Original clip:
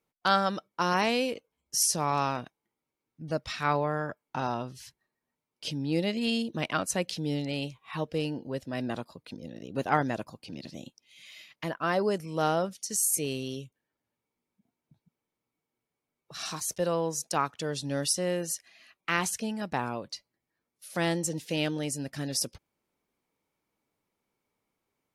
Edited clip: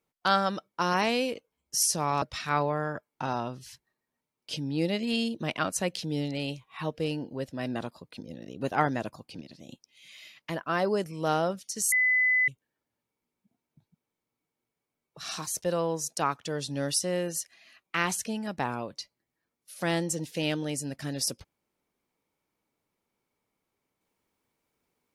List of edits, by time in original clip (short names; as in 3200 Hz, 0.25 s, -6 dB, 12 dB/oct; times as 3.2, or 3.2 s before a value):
2.22–3.36 cut
10.55–10.83 gain -6.5 dB
13.06–13.62 bleep 2010 Hz -20.5 dBFS